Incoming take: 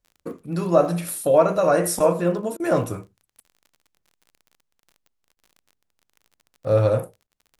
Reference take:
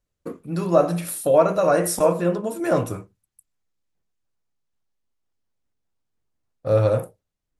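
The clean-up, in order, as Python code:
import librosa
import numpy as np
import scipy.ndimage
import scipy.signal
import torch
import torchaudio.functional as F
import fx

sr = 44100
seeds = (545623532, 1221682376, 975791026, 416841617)

y = fx.fix_declick_ar(x, sr, threshold=6.5)
y = fx.fix_interpolate(y, sr, at_s=(2.57, 4.8, 5.34, 7.27), length_ms=27.0)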